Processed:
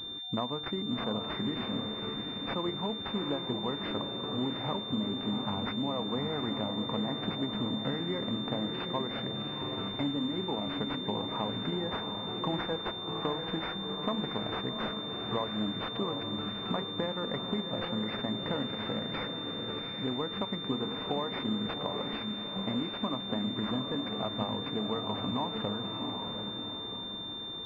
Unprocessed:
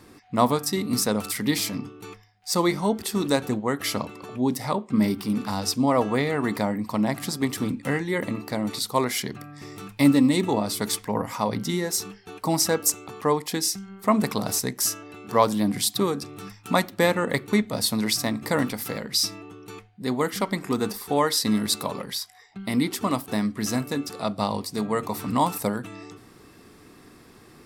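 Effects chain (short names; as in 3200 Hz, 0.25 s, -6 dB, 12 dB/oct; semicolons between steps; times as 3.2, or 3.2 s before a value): compressor 6:1, threshold -31 dBFS, peak gain reduction 17 dB; on a send: diffused feedback echo 0.742 s, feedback 46%, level -5 dB; on the sum: pulse-width modulation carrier 3600 Hz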